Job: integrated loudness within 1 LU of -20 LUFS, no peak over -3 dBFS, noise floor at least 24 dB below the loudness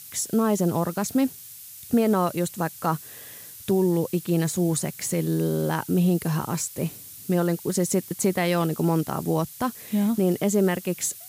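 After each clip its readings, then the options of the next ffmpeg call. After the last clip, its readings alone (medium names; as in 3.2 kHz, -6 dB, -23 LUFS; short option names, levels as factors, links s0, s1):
noise floor -43 dBFS; noise floor target -49 dBFS; loudness -24.5 LUFS; peak level -11.0 dBFS; loudness target -20.0 LUFS
-> -af "afftdn=nr=6:nf=-43"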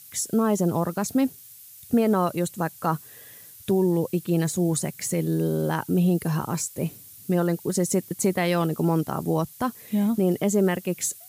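noise floor -47 dBFS; noise floor target -49 dBFS
-> -af "afftdn=nr=6:nf=-47"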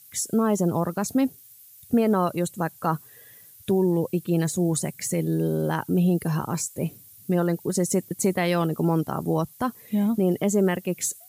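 noise floor -50 dBFS; loudness -25.0 LUFS; peak level -11.5 dBFS; loudness target -20.0 LUFS
-> -af "volume=1.78"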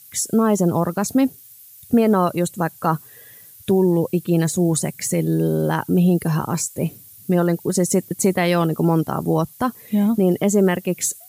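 loudness -20.0 LUFS; peak level -6.5 dBFS; noise floor -45 dBFS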